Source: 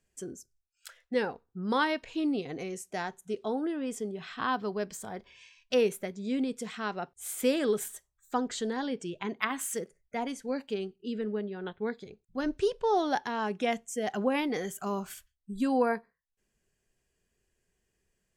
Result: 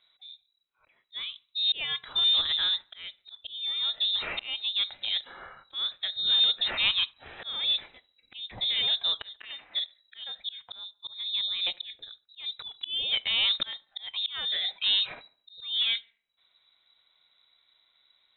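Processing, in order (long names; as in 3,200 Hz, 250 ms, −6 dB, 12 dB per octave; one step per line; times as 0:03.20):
volume swells 787 ms
in parallel at −8 dB: wave folding −35.5 dBFS
on the sum: harmonic generator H 4 −38 dB, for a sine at −20.5 dBFS
high-frequency loss of the air 73 metres
on a send: delay with a high-pass on its return 72 ms, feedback 41%, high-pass 2,600 Hz, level −20 dB
on the sum: voice inversion scrambler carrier 3,900 Hz
level +8.5 dB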